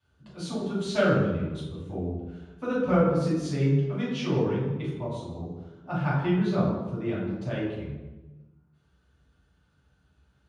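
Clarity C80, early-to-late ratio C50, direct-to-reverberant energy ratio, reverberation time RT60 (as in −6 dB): 3.5 dB, 0.5 dB, −9.0 dB, 1.2 s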